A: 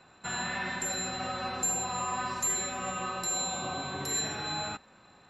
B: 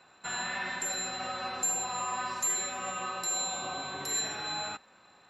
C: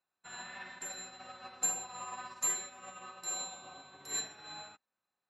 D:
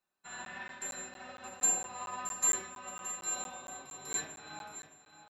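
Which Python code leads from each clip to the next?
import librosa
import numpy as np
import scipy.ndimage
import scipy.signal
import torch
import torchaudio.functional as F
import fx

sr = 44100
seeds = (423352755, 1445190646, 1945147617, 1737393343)

y1 = fx.low_shelf(x, sr, hz=280.0, db=-11.0)
y2 = fx.upward_expand(y1, sr, threshold_db=-48.0, expansion=2.5)
y3 = fx.echo_feedback(y2, sr, ms=621, feedback_pct=41, wet_db=-12.5)
y3 = fx.room_shoebox(y3, sr, seeds[0], volume_m3=140.0, walls='furnished', distance_m=1.2)
y3 = fx.buffer_crackle(y3, sr, first_s=0.45, period_s=0.23, block=512, kind='zero')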